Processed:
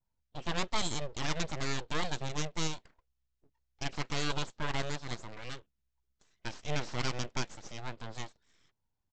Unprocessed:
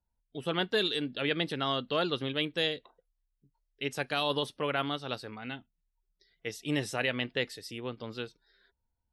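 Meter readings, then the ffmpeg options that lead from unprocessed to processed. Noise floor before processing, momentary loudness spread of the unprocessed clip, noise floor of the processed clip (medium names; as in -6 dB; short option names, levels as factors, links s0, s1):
-82 dBFS, 12 LU, -82 dBFS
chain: -af "aresample=16000,aeval=exprs='abs(val(0))':c=same,aresample=44100,adynamicequalizer=threshold=0.00398:dfrequency=2900:dqfactor=1:tfrequency=2900:tqfactor=1:attack=5:release=100:ratio=0.375:range=2.5:mode=cutabove:tftype=bell"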